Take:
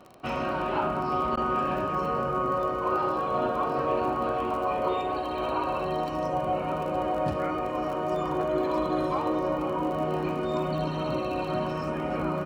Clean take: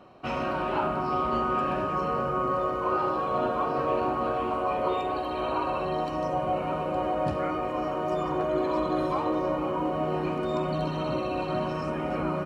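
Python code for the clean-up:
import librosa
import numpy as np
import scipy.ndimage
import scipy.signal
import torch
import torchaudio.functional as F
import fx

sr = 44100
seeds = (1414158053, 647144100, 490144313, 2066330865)

y = fx.fix_declick_ar(x, sr, threshold=6.5)
y = fx.fix_interpolate(y, sr, at_s=(1.36,), length_ms=11.0)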